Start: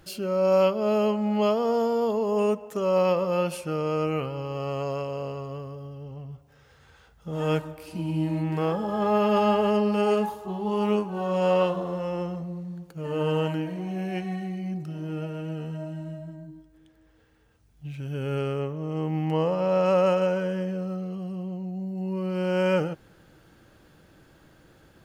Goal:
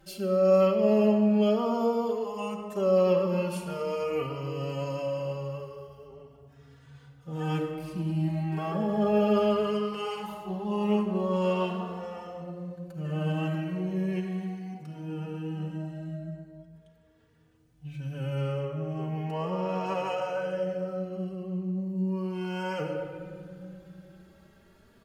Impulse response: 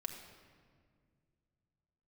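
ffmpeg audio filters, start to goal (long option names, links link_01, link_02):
-filter_complex "[0:a]asettb=1/sr,asplit=3[link_01][link_02][link_03];[link_01]atrim=end=3.694[link_04];[link_02]atrim=start=3.69:end=6.07,asetpts=PTS-STARTPTS,afade=type=in:duration=0.004:curve=qsin,afade=type=out:start_time=2.376:duration=0.004:curve=qsin,highshelf=frequency=4100:gain=6.5[link_05];[link_03]atrim=start=6.066[link_06];[link_04][link_05]acrossfade=duration=0.004:curve1=hsin:curve2=qsin[link_07];[link_07][link_06]acrossfade=duration=0.004:curve1=qsin:curve2=hsin[link_08];[1:a]atrim=start_sample=2205,asetrate=37926,aresample=44100[link_09];[link_08][link_09]afir=irnorm=-1:irlink=0,asplit=2[link_10][link_11];[link_11]adelay=3.4,afreqshift=0.38[link_12];[link_10][link_12]amix=inputs=2:normalize=1"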